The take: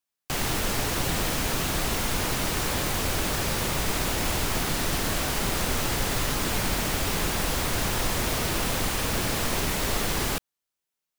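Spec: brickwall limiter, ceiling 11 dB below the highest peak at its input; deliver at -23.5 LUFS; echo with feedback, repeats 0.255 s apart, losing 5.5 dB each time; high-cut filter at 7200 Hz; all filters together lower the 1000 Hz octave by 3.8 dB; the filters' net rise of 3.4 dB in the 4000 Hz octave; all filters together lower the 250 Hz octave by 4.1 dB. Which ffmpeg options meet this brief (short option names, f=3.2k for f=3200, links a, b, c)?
-af "lowpass=7.2k,equalizer=f=250:t=o:g=-5.5,equalizer=f=1k:t=o:g=-5,equalizer=f=4k:t=o:g=5,alimiter=level_in=0.5dB:limit=-24dB:level=0:latency=1,volume=-0.5dB,aecho=1:1:255|510|765|1020|1275|1530|1785:0.531|0.281|0.149|0.079|0.0419|0.0222|0.0118,volume=8dB"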